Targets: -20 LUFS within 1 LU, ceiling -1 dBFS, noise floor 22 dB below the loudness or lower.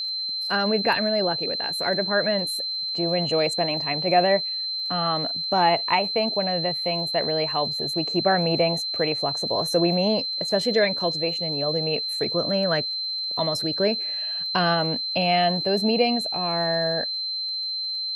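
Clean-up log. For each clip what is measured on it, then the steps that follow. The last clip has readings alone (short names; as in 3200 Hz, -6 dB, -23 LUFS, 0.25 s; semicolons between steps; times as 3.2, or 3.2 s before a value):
ticks 32/s; steady tone 4100 Hz; tone level -26 dBFS; loudness -23.0 LUFS; peak -7.0 dBFS; loudness target -20.0 LUFS
-> de-click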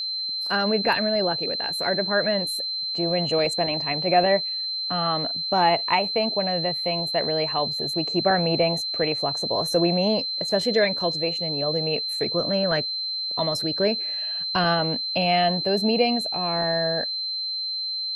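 ticks 0/s; steady tone 4100 Hz; tone level -26 dBFS
-> notch 4100 Hz, Q 30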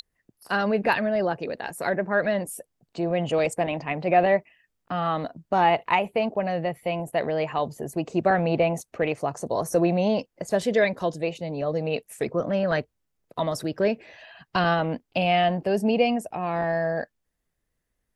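steady tone none; loudness -25.5 LUFS; peak -7.5 dBFS; loudness target -20.0 LUFS
-> gain +5.5 dB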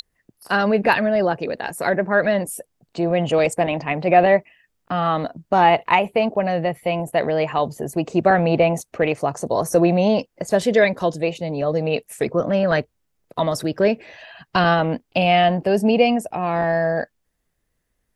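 loudness -20.0 LUFS; peak -2.0 dBFS; noise floor -73 dBFS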